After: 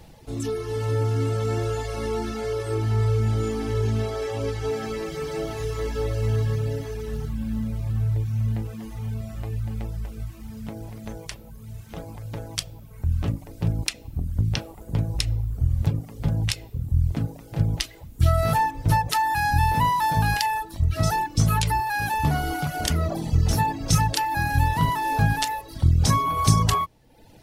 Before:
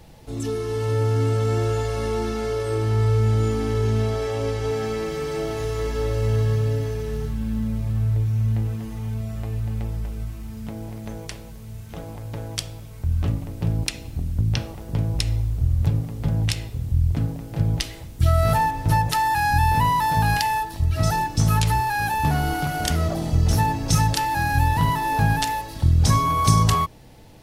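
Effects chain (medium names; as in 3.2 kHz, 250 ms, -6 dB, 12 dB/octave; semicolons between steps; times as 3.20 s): reverb removal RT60 0.83 s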